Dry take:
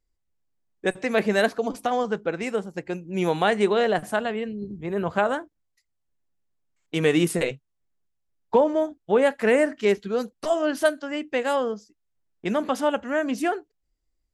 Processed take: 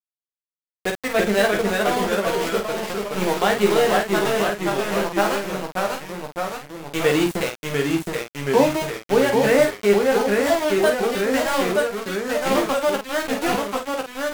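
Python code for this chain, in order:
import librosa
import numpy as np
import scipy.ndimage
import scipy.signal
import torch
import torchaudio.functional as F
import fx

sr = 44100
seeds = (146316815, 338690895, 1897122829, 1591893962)

y = np.where(np.abs(x) >= 10.0 ** (-23.5 / 20.0), x, 0.0)
y = fx.echo_pitch(y, sr, ms=281, semitones=-1, count=3, db_per_echo=-3.0)
y = fx.room_early_taps(y, sr, ms=(15, 49), db=(-5.0, -6.0))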